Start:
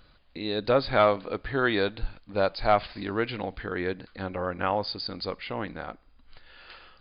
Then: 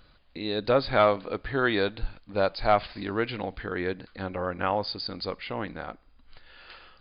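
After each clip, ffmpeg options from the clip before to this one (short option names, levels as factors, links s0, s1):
-af anull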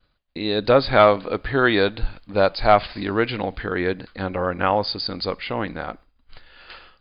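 -af "agate=range=0.0224:threshold=0.00501:ratio=3:detection=peak,volume=2.24"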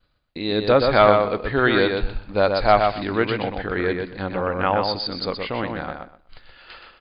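-filter_complex "[0:a]asplit=2[s0][s1];[s1]adelay=124,lowpass=f=4400:p=1,volume=0.596,asplit=2[s2][s3];[s3]adelay=124,lowpass=f=4400:p=1,volume=0.2,asplit=2[s4][s5];[s5]adelay=124,lowpass=f=4400:p=1,volume=0.2[s6];[s0][s2][s4][s6]amix=inputs=4:normalize=0,volume=0.891"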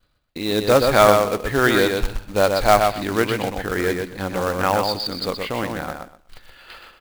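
-af "acrusher=bits=3:mode=log:mix=0:aa=0.000001,volume=1.12"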